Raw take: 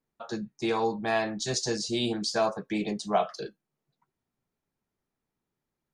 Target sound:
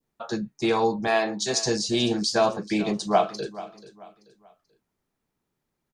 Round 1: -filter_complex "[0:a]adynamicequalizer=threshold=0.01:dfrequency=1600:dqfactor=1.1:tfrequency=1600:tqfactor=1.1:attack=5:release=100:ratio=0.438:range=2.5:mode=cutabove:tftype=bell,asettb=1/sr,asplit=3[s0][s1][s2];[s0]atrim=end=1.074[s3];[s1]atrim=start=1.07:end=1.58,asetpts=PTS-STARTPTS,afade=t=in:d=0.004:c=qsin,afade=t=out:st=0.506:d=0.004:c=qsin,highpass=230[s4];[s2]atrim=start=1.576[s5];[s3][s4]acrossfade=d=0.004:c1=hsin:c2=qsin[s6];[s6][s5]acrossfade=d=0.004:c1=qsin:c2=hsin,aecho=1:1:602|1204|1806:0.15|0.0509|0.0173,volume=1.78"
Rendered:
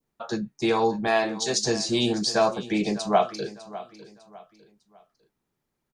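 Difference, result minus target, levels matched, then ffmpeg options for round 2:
echo 167 ms late
-filter_complex "[0:a]adynamicequalizer=threshold=0.01:dfrequency=1600:dqfactor=1.1:tfrequency=1600:tqfactor=1.1:attack=5:release=100:ratio=0.438:range=2.5:mode=cutabove:tftype=bell,asettb=1/sr,asplit=3[s0][s1][s2];[s0]atrim=end=1.074[s3];[s1]atrim=start=1.07:end=1.58,asetpts=PTS-STARTPTS,afade=t=in:d=0.004:c=qsin,afade=t=out:st=0.506:d=0.004:c=qsin,highpass=230[s4];[s2]atrim=start=1.576[s5];[s3][s4]acrossfade=d=0.004:c1=hsin:c2=qsin[s6];[s6][s5]acrossfade=d=0.004:c1=qsin:c2=hsin,aecho=1:1:435|870|1305:0.15|0.0509|0.0173,volume=1.78"

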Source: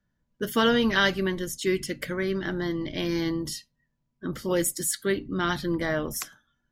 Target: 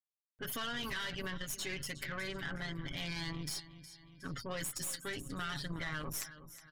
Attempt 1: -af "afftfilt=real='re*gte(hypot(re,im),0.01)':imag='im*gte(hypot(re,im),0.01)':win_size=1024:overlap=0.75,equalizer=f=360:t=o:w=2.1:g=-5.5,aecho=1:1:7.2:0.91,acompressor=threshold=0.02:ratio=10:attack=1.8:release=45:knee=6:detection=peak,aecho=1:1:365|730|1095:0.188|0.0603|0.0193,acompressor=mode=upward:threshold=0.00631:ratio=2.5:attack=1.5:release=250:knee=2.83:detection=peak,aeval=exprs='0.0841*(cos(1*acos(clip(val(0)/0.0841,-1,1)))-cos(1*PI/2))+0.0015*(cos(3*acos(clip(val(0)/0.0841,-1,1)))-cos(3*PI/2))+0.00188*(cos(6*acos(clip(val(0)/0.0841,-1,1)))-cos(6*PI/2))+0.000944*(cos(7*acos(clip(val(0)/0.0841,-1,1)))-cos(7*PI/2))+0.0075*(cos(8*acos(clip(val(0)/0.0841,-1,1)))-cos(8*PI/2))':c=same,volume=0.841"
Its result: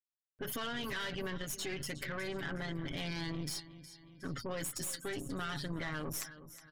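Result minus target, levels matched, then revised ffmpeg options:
500 Hz band +3.5 dB
-af "afftfilt=real='re*gte(hypot(re,im),0.01)':imag='im*gte(hypot(re,im),0.01)':win_size=1024:overlap=0.75,equalizer=f=360:t=o:w=2.1:g=-14.5,aecho=1:1:7.2:0.91,acompressor=threshold=0.02:ratio=10:attack=1.8:release=45:knee=6:detection=peak,aecho=1:1:365|730|1095:0.188|0.0603|0.0193,acompressor=mode=upward:threshold=0.00631:ratio=2.5:attack=1.5:release=250:knee=2.83:detection=peak,aeval=exprs='0.0841*(cos(1*acos(clip(val(0)/0.0841,-1,1)))-cos(1*PI/2))+0.0015*(cos(3*acos(clip(val(0)/0.0841,-1,1)))-cos(3*PI/2))+0.00188*(cos(6*acos(clip(val(0)/0.0841,-1,1)))-cos(6*PI/2))+0.000944*(cos(7*acos(clip(val(0)/0.0841,-1,1)))-cos(7*PI/2))+0.0075*(cos(8*acos(clip(val(0)/0.0841,-1,1)))-cos(8*PI/2))':c=same,volume=0.841"

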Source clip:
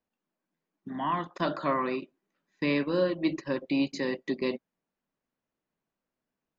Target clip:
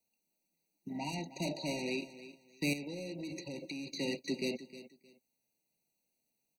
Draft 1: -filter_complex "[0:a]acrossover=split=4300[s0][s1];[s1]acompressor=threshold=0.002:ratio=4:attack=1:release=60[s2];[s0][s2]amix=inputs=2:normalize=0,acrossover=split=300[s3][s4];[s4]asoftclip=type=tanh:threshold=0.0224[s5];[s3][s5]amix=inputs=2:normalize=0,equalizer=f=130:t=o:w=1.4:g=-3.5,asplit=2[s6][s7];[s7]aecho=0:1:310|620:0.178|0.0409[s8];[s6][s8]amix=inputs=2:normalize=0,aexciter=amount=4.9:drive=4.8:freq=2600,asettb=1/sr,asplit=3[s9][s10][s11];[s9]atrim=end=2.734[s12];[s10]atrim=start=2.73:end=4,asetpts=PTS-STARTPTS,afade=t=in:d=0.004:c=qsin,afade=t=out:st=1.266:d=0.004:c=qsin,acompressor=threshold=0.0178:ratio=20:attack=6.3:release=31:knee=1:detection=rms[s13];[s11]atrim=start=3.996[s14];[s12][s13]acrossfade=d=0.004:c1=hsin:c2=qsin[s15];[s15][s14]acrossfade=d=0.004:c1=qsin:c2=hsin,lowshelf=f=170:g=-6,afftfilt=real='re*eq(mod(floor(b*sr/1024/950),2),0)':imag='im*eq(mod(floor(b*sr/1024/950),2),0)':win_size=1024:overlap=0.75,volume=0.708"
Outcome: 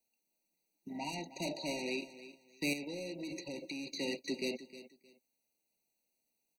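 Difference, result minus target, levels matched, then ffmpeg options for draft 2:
125 Hz band -5.5 dB
-filter_complex "[0:a]acrossover=split=4300[s0][s1];[s1]acompressor=threshold=0.002:ratio=4:attack=1:release=60[s2];[s0][s2]amix=inputs=2:normalize=0,acrossover=split=300[s3][s4];[s4]asoftclip=type=tanh:threshold=0.0224[s5];[s3][s5]amix=inputs=2:normalize=0,equalizer=f=130:t=o:w=1.4:g=4.5,asplit=2[s6][s7];[s7]aecho=0:1:310|620:0.178|0.0409[s8];[s6][s8]amix=inputs=2:normalize=0,aexciter=amount=4.9:drive=4.8:freq=2600,asettb=1/sr,asplit=3[s9][s10][s11];[s9]atrim=end=2.734[s12];[s10]atrim=start=2.73:end=4,asetpts=PTS-STARTPTS,afade=t=in:d=0.004:c=qsin,afade=t=out:st=1.266:d=0.004:c=qsin,acompressor=threshold=0.0178:ratio=20:attack=6.3:release=31:knee=1:detection=rms[s13];[s11]atrim=start=3.996[s14];[s12][s13]acrossfade=d=0.004:c1=hsin:c2=qsin[s15];[s15][s14]acrossfade=d=0.004:c1=qsin:c2=hsin,lowshelf=f=170:g=-6,afftfilt=real='re*eq(mod(floor(b*sr/1024/950),2),0)':imag='im*eq(mod(floor(b*sr/1024/950),2),0)':win_size=1024:overlap=0.75,volume=0.708"

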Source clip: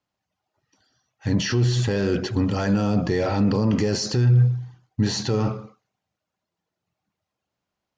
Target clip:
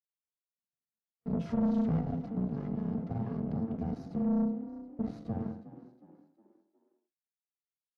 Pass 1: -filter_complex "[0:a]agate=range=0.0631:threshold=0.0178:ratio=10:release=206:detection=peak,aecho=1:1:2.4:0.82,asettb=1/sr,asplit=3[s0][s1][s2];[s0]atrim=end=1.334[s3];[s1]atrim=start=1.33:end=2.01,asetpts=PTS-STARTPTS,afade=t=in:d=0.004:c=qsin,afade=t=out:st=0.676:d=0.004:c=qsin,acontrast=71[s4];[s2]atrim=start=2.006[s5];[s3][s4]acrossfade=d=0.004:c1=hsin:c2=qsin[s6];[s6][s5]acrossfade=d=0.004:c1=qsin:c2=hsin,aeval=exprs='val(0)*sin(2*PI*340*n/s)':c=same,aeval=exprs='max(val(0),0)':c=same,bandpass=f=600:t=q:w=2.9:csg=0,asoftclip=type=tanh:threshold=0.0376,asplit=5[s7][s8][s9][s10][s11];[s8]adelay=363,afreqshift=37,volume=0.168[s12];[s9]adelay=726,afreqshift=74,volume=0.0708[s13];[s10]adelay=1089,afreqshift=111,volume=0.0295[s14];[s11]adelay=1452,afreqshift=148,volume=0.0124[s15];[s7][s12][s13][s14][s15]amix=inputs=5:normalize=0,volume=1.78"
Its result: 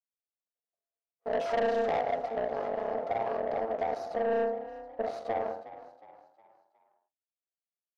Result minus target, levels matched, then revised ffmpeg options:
125 Hz band -20.0 dB
-filter_complex "[0:a]agate=range=0.0631:threshold=0.0178:ratio=10:release=206:detection=peak,aecho=1:1:2.4:0.82,asettb=1/sr,asplit=3[s0][s1][s2];[s0]atrim=end=1.334[s3];[s1]atrim=start=1.33:end=2.01,asetpts=PTS-STARTPTS,afade=t=in:d=0.004:c=qsin,afade=t=out:st=0.676:d=0.004:c=qsin,acontrast=71[s4];[s2]atrim=start=2.006[s5];[s3][s4]acrossfade=d=0.004:c1=hsin:c2=qsin[s6];[s6][s5]acrossfade=d=0.004:c1=qsin:c2=hsin,aeval=exprs='val(0)*sin(2*PI*340*n/s)':c=same,aeval=exprs='max(val(0),0)':c=same,bandpass=f=170:t=q:w=2.9:csg=0,asoftclip=type=tanh:threshold=0.0376,asplit=5[s7][s8][s9][s10][s11];[s8]adelay=363,afreqshift=37,volume=0.168[s12];[s9]adelay=726,afreqshift=74,volume=0.0708[s13];[s10]adelay=1089,afreqshift=111,volume=0.0295[s14];[s11]adelay=1452,afreqshift=148,volume=0.0124[s15];[s7][s12][s13][s14][s15]amix=inputs=5:normalize=0,volume=1.78"

